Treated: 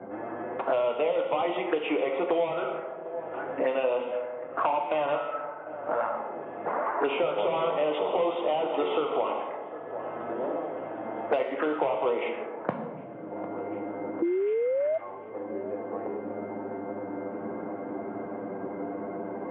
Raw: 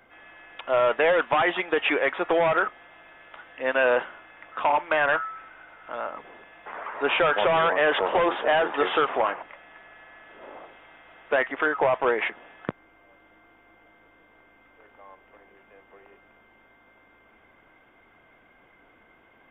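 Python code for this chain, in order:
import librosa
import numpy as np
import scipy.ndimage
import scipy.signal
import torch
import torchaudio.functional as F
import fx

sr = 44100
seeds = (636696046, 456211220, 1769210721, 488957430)

p1 = fx.env_flanger(x, sr, rest_ms=11.2, full_db=-23.5)
p2 = fx.rider(p1, sr, range_db=4, speed_s=0.5)
p3 = p1 + (p2 * 10.0 ** (2.0 / 20.0))
p4 = scipy.signal.sosfilt(scipy.signal.bessel(2, 170.0, 'highpass', norm='mag', fs=sr, output='sos'), p3)
p5 = fx.rev_plate(p4, sr, seeds[0], rt60_s=1.1, hf_ratio=0.95, predelay_ms=0, drr_db=3.0)
p6 = fx.spec_paint(p5, sr, seeds[1], shape='rise', start_s=14.22, length_s=0.76, low_hz=330.0, high_hz=660.0, level_db=-25.0)
p7 = p6 + fx.echo_thinned(p6, sr, ms=751, feedback_pct=66, hz=1100.0, wet_db=-21, dry=0)
p8 = fx.env_lowpass(p7, sr, base_hz=460.0, full_db=-13.5)
p9 = scipy.signal.sosfilt(scipy.signal.bessel(2, 2000.0, 'lowpass', norm='mag', fs=sr, output='sos'), p8)
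p10 = fx.band_squash(p9, sr, depth_pct=100)
y = p10 * 10.0 ** (-8.0 / 20.0)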